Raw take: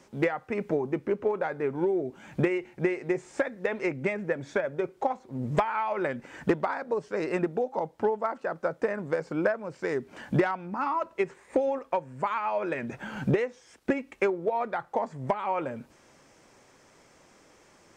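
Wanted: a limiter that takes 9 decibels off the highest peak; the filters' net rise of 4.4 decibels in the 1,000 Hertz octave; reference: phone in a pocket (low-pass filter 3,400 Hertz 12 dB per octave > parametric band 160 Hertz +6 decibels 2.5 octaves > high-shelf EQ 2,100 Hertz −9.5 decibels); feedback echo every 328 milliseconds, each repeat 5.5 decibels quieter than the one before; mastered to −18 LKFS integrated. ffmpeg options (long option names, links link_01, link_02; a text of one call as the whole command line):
ffmpeg -i in.wav -af "equalizer=frequency=1000:width_type=o:gain=6.5,alimiter=limit=-18dB:level=0:latency=1,lowpass=3400,equalizer=frequency=160:width_type=o:width=2.5:gain=6,highshelf=frequency=2100:gain=-9.5,aecho=1:1:328|656|984|1312|1640|1968|2296:0.531|0.281|0.149|0.079|0.0419|0.0222|0.0118,volume=9dB" out.wav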